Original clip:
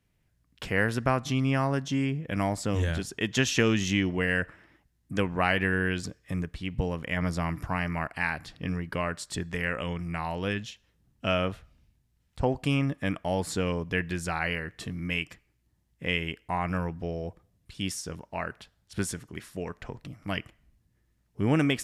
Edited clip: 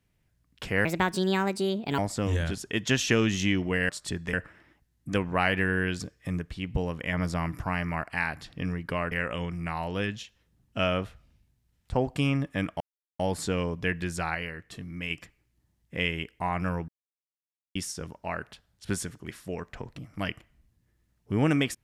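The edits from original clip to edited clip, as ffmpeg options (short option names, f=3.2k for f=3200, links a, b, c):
-filter_complex "[0:a]asplit=11[a][b][c][d][e][f][g][h][i][j][k];[a]atrim=end=0.854[l];[b]atrim=start=0.85:end=2.46,asetpts=PTS-STARTPTS,asetrate=62622,aresample=44100[m];[c]atrim=start=2.456:end=4.372[n];[d]atrim=start=9.148:end=9.592[o];[e]atrim=start=4.368:end=9.152[p];[f]atrim=start=9.588:end=13.28,asetpts=PTS-STARTPTS,afade=t=out:st=3.688:d=0.004:c=hsin,apad=pad_dur=0.39[q];[g]atrim=start=13.28:end=14.432,asetpts=PTS-STARTPTS,afade=t=in:d=0.004:c=hsin[r];[h]atrim=start=14.428:end=15.192,asetpts=PTS-STARTPTS,volume=-4.5dB[s];[i]atrim=start=15.188:end=16.97,asetpts=PTS-STARTPTS,afade=t=out:st=1.778:d=0.004:c=hsin[t];[j]atrim=start=16.97:end=17.84,asetpts=PTS-STARTPTS,volume=0[u];[k]atrim=start=17.84,asetpts=PTS-STARTPTS,afade=t=in:d=0.004:c=hsin[v];[l][m]acrossfade=d=0.004:c1=hsin:c2=hsin[w];[w][n]acrossfade=d=0.004:c1=hsin:c2=hsin[x];[x][o]acrossfade=d=0.004:c1=hsin:c2=hsin[y];[y][p]acrossfade=d=0.004:c1=hsin:c2=hsin[z];[q][r]concat=n=2:v=0:a=1[aa];[z][aa]acrossfade=d=0.004:c1=hsin:c2=hsin[ab];[ab][s]acrossfade=d=0.004:c1=hsin:c2=hsin[ac];[t][u][v]concat=n=3:v=0:a=1[ad];[ac][ad]acrossfade=d=0.004:c1=hsin:c2=hsin"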